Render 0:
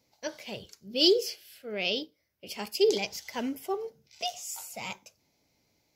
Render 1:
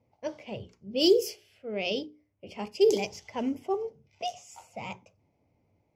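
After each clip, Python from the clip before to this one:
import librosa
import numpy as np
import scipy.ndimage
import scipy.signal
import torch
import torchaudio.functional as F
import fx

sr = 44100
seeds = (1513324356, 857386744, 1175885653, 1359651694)

y = fx.hum_notches(x, sr, base_hz=60, count=7)
y = fx.env_lowpass(y, sr, base_hz=2000.0, full_db=-23.0)
y = fx.graphic_eq_15(y, sr, hz=(100, 1600, 4000), db=(8, -11, -12))
y = y * librosa.db_to_amplitude(3.0)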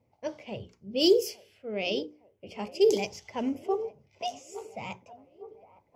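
y = fx.echo_wet_bandpass(x, sr, ms=861, feedback_pct=59, hz=680.0, wet_db=-17)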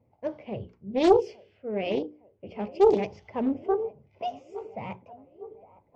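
y = fx.spacing_loss(x, sr, db_at_10k=38)
y = fx.doppler_dist(y, sr, depth_ms=0.39)
y = y * librosa.db_to_amplitude(5.0)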